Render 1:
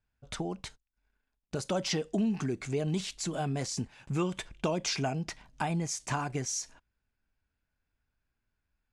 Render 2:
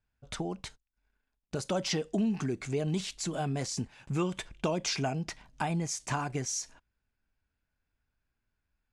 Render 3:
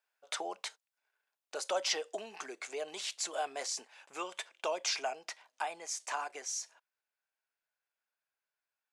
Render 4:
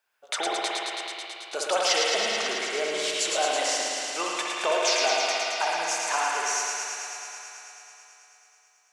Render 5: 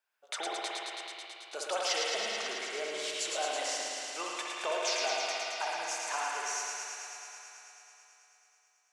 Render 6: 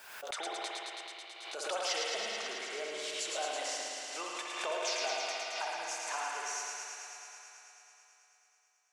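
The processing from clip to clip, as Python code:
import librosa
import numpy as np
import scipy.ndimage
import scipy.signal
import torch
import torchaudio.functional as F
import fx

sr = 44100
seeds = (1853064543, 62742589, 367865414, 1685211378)

y1 = x
y2 = scipy.signal.sosfilt(scipy.signal.butter(4, 520.0, 'highpass', fs=sr, output='sos'), y1)
y2 = fx.rider(y2, sr, range_db=5, speed_s=2.0)
y2 = F.gain(torch.from_numpy(y2), -1.5).numpy()
y3 = fx.echo_wet_highpass(y2, sr, ms=109, feedback_pct=82, hz=1600.0, wet_db=-3.5)
y3 = fx.rev_spring(y3, sr, rt60_s=2.7, pass_ms=(59,), chirp_ms=40, drr_db=-2.5)
y3 = F.gain(torch.from_numpy(y3), 7.5).numpy()
y4 = fx.highpass(y3, sr, hz=220.0, slope=6)
y4 = F.gain(torch.from_numpy(y4), -8.0).numpy()
y5 = fx.pre_swell(y4, sr, db_per_s=50.0)
y5 = F.gain(torch.from_numpy(y5), -3.0).numpy()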